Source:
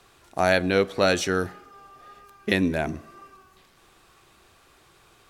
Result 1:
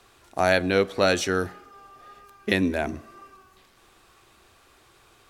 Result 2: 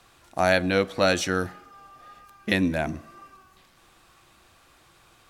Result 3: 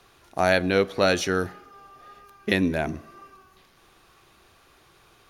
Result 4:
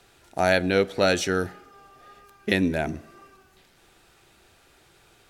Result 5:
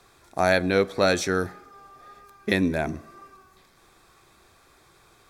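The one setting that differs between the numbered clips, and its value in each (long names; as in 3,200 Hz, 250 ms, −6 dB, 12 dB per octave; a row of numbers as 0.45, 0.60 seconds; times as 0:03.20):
notch filter, centre frequency: 160, 410, 7,800, 1,100, 2,900 Hertz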